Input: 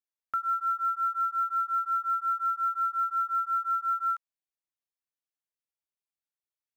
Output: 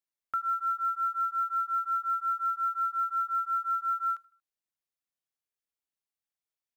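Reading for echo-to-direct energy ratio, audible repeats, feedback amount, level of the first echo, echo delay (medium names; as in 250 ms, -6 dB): -22.0 dB, 2, 40%, -22.5 dB, 78 ms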